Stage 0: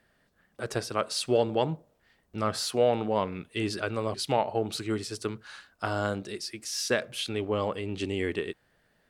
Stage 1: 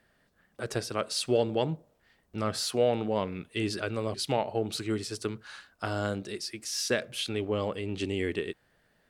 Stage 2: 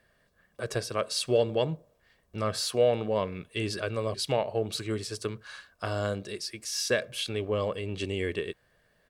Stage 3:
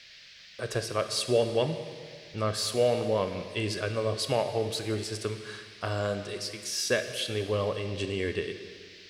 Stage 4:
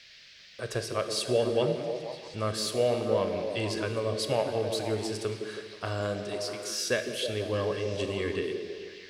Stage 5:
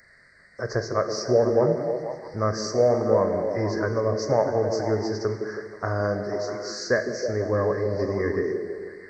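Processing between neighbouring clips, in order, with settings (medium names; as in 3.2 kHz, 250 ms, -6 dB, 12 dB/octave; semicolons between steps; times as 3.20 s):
dynamic bell 1 kHz, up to -5 dB, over -40 dBFS, Q 1.1
comb 1.8 ms, depth 38%
band noise 1.7–5.2 kHz -52 dBFS; plate-style reverb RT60 1.9 s, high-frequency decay 0.9×, DRR 8 dB
repeats whose band climbs or falls 161 ms, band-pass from 290 Hz, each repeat 0.7 oct, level -1.5 dB; trim -1.5 dB
knee-point frequency compression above 2 kHz 1.5:1; Chebyshev band-stop 2–4.6 kHz, order 4; trim +7 dB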